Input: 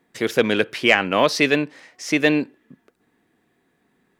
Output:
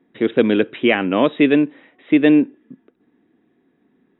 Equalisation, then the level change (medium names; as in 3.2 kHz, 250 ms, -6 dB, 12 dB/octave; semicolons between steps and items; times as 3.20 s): brick-wall FIR low-pass 3.9 kHz; peaking EQ 280 Hz +12.5 dB 1.5 oct; -4.0 dB